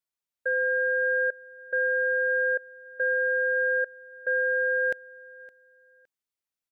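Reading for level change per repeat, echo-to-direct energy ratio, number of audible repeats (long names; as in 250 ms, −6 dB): −12.0 dB, −21.5 dB, 2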